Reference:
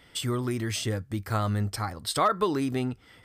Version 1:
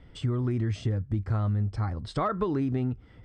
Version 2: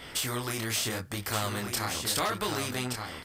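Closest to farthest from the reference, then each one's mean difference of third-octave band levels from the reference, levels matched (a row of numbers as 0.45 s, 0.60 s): 1, 2; 8.5 dB, 12.0 dB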